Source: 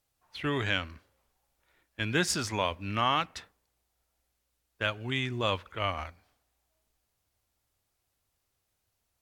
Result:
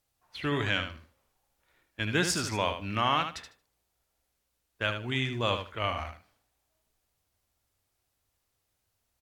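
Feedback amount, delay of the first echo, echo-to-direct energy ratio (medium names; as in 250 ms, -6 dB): 18%, 76 ms, -8.0 dB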